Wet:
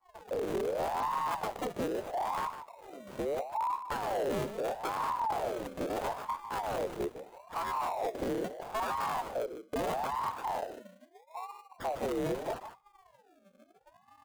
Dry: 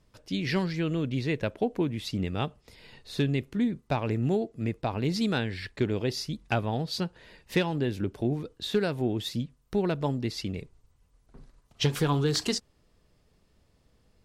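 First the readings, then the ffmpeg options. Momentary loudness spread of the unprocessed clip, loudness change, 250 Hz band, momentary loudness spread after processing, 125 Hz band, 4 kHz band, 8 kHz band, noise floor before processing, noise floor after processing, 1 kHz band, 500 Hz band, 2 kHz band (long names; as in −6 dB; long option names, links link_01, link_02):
6 LU, −5.0 dB, −12.0 dB, 10 LU, −18.5 dB, −13.0 dB, −7.5 dB, −67 dBFS, −66 dBFS, +5.5 dB, −3.0 dB, −6.0 dB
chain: -af "afftdn=noise_reduction=21:noise_floor=-48,superequalizer=10b=0.355:12b=1.58,afreqshift=-210,alimiter=limit=-21.5dB:level=0:latency=1:release=459,asoftclip=type=tanh:threshold=-38.5dB,tiltshelf=frequency=1400:gain=6,acrusher=samples=37:mix=1:aa=0.000001:lfo=1:lforange=22.2:lforate=0.23,asuperstop=centerf=4900:order=4:qfactor=7.8,aecho=1:1:153:0.299,aeval=exprs='val(0)*sin(2*PI*700*n/s+700*0.45/0.77*sin(2*PI*0.77*n/s))':channel_layout=same,volume=5dB"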